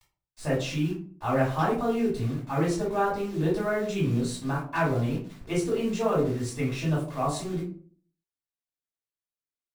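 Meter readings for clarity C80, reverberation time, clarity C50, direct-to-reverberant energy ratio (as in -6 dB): 11.0 dB, 0.45 s, 6.0 dB, -7.0 dB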